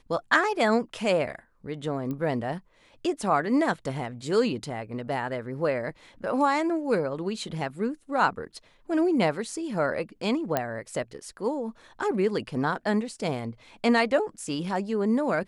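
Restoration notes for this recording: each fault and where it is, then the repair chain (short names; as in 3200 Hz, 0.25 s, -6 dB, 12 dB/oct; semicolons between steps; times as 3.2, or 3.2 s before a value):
2.11 pop -22 dBFS
10.57 pop -11 dBFS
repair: de-click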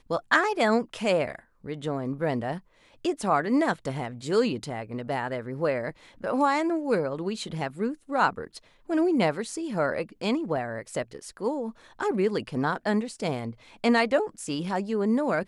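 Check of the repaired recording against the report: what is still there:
none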